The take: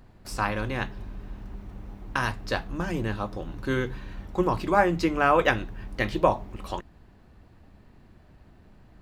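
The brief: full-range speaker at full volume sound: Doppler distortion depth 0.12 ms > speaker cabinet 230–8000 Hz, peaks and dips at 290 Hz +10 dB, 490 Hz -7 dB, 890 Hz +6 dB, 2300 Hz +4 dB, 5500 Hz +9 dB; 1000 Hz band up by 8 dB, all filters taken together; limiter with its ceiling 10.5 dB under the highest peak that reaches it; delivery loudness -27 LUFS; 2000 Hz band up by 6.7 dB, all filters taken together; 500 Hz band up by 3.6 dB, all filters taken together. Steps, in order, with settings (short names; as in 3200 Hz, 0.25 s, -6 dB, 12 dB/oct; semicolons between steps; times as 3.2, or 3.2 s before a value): bell 500 Hz +5.5 dB; bell 1000 Hz +3.5 dB; bell 2000 Hz +5.5 dB; limiter -10.5 dBFS; Doppler distortion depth 0.12 ms; speaker cabinet 230–8000 Hz, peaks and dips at 290 Hz +10 dB, 490 Hz -7 dB, 890 Hz +6 dB, 2300 Hz +4 dB, 5500 Hz +9 dB; gain -2.5 dB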